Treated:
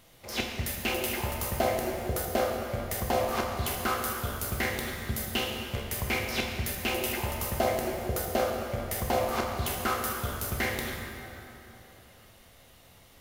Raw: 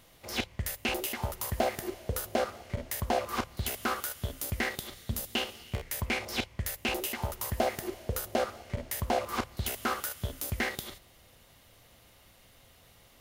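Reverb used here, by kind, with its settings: plate-style reverb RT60 3.3 s, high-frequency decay 0.6×, DRR 0 dB

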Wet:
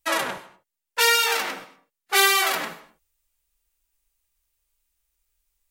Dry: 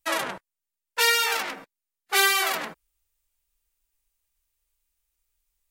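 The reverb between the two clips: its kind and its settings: gated-style reverb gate 270 ms falling, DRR 9.5 dB; trim +2 dB

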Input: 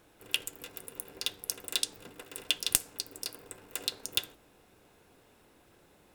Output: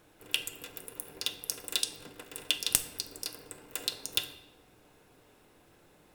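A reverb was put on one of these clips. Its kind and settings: simulated room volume 590 m³, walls mixed, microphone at 0.47 m

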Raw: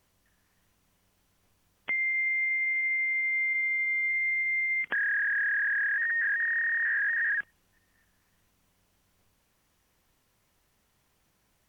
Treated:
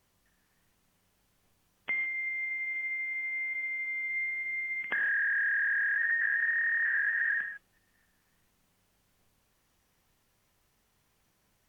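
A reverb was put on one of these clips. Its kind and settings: gated-style reverb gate 180 ms flat, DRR 7 dB; trim -2 dB

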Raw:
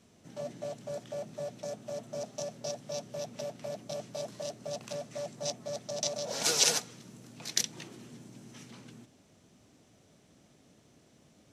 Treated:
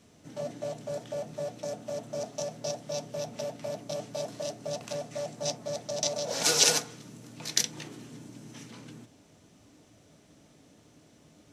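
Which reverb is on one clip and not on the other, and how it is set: FDN reverb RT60 0.42 s, low-frequency decay 0.85×, high-frequency decay 0.4×, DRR 8 dB; trim +3 dB

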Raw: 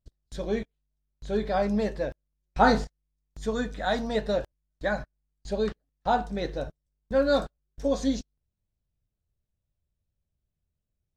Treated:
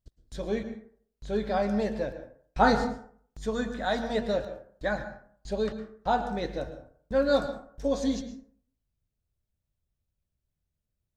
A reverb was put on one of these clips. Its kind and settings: plate-style reverb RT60 0.53 s, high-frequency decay 0.5×, pre-delay 100 ms, DRR 10 dB; trim -1.5 dB

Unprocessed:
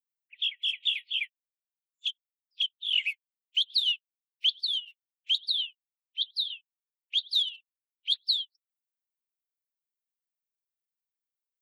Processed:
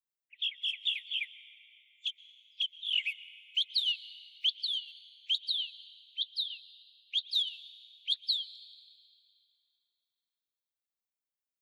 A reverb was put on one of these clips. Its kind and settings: plate-style reverb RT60 4.7 s, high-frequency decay 0.5×, pre-delay 105 ms, DRR 14.5 dB; trim -4 dB

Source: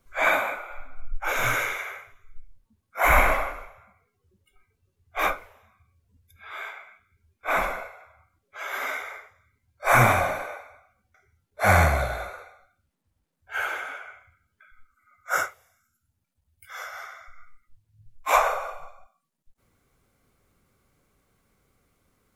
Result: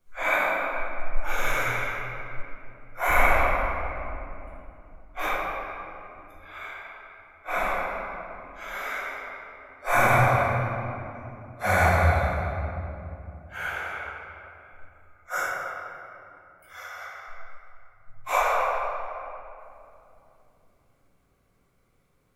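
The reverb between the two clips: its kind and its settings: simulated room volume 120 m³, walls hard, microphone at 0.97 m; trim -9 dB

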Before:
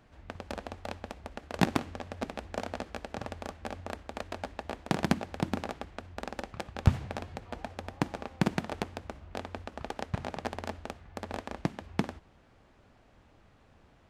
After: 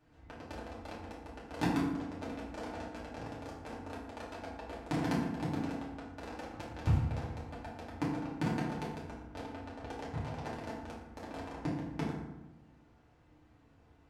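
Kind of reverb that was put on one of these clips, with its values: FDN reverb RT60 0.99 s, low-frequency decay 1.45×, high-frequency decay 0.55×, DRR -7.5 dB; trim -13 dB

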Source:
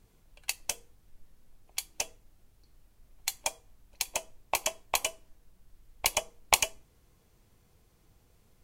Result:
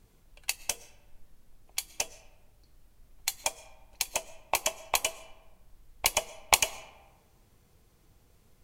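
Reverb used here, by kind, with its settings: algorithmic reverb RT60 1.3 s, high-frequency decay 0.5×, pre-delay 80 ms, DRR 18 dB; trim +1.5 dB

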